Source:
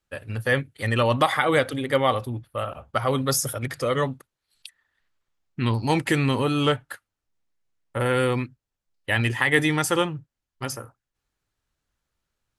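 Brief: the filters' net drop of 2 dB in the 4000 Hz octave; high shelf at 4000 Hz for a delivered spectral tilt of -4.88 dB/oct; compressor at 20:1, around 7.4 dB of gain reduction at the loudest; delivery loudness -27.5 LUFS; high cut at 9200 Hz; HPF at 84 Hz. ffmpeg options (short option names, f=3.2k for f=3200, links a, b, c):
-af "highpass=84,lowpass=9.2k,highshelf=f=4k:g=3,equalizer=f=4k:t=o:g=-4.5,acompressor=threshold=-22dB:ratio=20,volume=1.5dB"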